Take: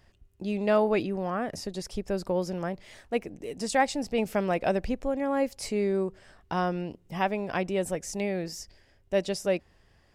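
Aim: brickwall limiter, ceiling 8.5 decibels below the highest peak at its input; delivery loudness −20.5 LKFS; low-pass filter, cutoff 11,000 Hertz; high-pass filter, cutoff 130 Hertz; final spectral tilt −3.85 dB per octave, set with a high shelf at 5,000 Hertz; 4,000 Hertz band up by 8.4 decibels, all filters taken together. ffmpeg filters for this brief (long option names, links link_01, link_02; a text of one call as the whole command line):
ffmpeg -i in.wav -af "highpass=130,lowpass=11000,equalizer=frequency=4000:width_type=o:gain=8.5,highshelf=frequency=5000:gain=5.5,volume=10.5dB,alimiter=limit=-8.5dB:level=0:latency=1" out.wav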